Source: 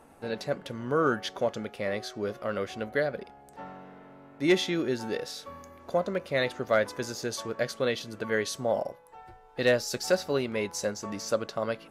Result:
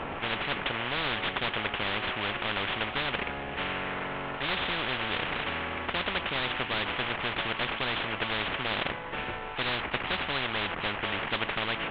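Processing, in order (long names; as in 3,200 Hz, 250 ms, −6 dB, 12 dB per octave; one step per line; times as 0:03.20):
variable-slope delta modulation 16 kbit/s
every bin compressed towards the loudest bin 10 to 1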